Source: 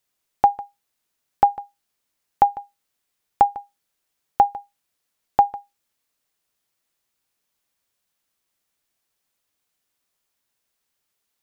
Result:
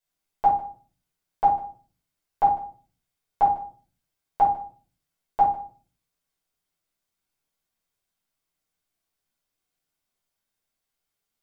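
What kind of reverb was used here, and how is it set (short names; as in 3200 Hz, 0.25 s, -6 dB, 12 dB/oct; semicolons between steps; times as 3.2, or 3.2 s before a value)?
shoebox room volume 250 m³, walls furnished, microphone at 5.2 m; gain -14 dB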